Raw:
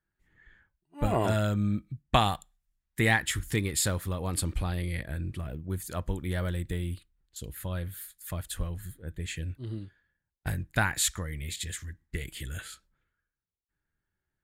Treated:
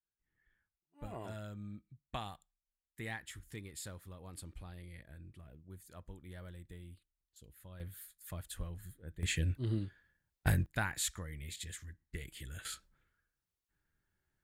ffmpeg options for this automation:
-af "asetnsamples=n=441:p=0,asendcmd='7.8 volume volume -9dB;9.23 volume volume 2dB;10.66 volume volume -9dB;12.65 volume volume 1.5dB',volume=-18.5dB"

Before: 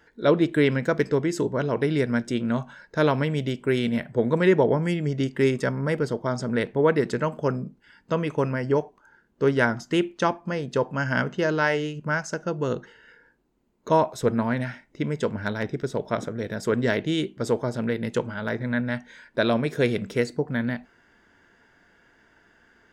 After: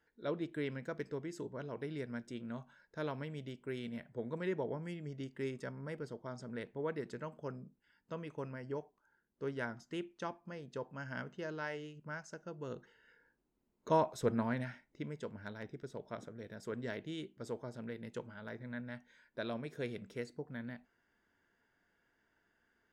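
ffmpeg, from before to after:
-af "volume=-10dB,afade=t=in:st=12.57:d=1.32:silence=0.375837,afade=t=out:st=14.41:d=0.81:silence=0.398107"

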